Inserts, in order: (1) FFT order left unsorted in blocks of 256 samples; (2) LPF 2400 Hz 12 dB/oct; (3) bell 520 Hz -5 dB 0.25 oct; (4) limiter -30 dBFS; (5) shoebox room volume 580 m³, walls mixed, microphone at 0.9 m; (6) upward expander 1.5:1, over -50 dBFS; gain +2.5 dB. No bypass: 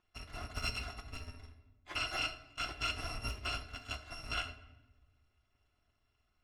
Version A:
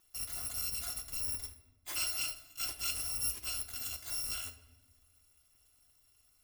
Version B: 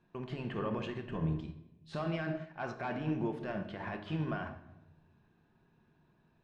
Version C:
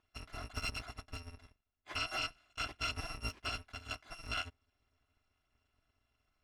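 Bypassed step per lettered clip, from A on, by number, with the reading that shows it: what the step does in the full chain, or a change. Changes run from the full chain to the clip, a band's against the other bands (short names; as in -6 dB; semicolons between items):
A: 2, 8 kHz band +22.0 dB; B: 1, 4 kHz band -21.5 dB; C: 5, crest factor change -2.5 dB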